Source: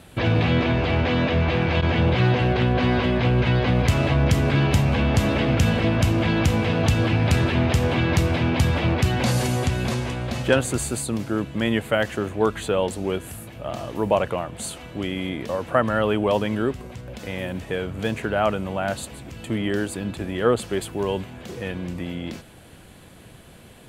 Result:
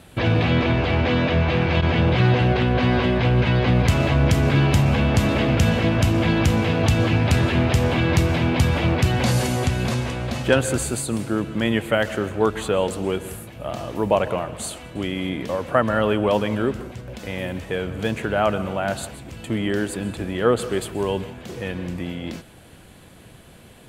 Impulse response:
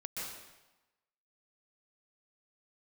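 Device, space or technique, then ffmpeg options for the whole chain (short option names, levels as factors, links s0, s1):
keyed gated reverb: -filter_complex "[0:a]asplit=3[s0][s1][s2];[1:a]atrim=start_sample=2205[s3];[s1][s3]afir=irnorm=-1:irlink=0[s4];[s2]apad=whole_len=1053137[s5];[s4][s5]sidechaingate=range=0.0224:threshold=0.0158:ratio=16:detection=peak,volume=0.251[s6];[s0][s6]amix=inputs=2:normalize=0"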